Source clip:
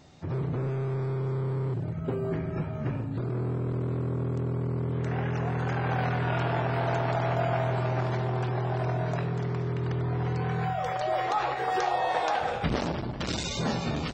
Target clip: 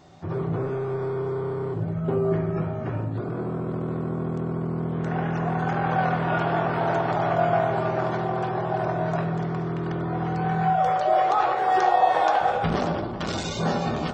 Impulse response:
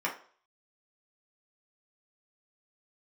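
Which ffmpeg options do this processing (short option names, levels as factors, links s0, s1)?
-filter_complex "[0:a]asplit=2[s0][s1];[1:a]atrim=start_sample=2205,asetrate=28224,aresample=44100,lowpass=3300[s2];[s1][s2]afir=irnorm=-1:irlink=0,volume=0.335[s3];[s0][s3]amix=inputs=2:normalize=0"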